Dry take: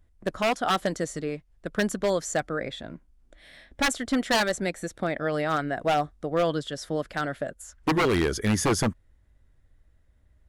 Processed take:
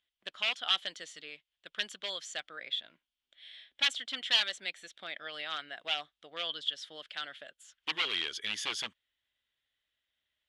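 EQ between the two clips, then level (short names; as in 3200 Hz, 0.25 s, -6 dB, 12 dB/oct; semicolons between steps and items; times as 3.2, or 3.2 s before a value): band-pass 3200 Hz, Q 4.7; +7.5 dB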